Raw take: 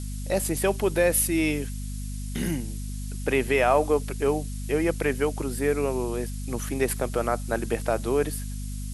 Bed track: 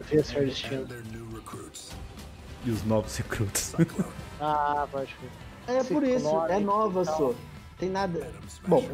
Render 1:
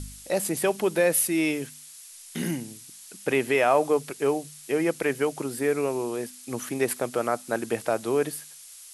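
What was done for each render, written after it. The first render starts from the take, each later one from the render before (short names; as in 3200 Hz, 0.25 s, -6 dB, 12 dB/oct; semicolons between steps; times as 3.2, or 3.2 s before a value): de-hum 50 Hz, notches 5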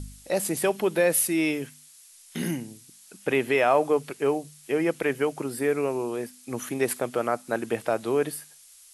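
noise print and reduce 6 dB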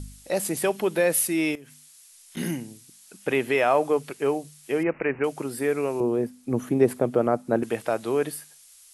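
1.55–2.37 compressor 12:1, threshold -41 dBFS; 4.83–5.24 careless resampling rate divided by 8×, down none, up filtered; 6–7.63 tilt shelf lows +9.5 dB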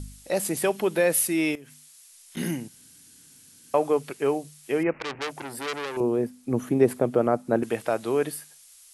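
2.68–3.74 room tone; 4.99–5.97 core saturation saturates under 3700 Hz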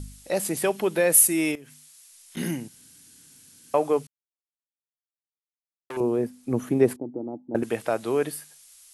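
1.12–1.52 resonant high shelf 5900 Hz +6.5 dB, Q 1.5; 4.07–5.9 mute; 6.96–7.55 vocal tract filter u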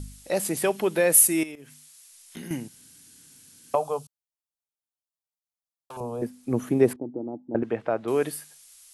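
1.43–2.51 compressor 16:1, threshold -34 dBFS; 3.75–6.22 fixed phaser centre 800 Hz, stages 4; 6.93–8.08 Bessel low-pass 1600 Hz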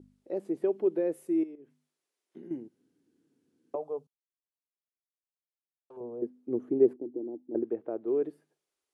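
band-pass 360 Hz, Q 3.4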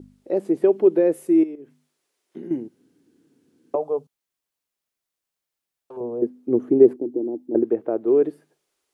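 gain +11 dB; limiter -3 dBFS, peak gain reduction 2.5 dB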